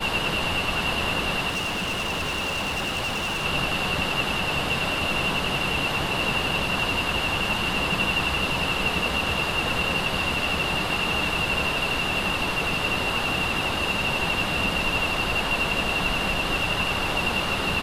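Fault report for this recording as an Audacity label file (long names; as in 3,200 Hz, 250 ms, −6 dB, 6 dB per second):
1.480000	3.460000	clipping −24 dBFS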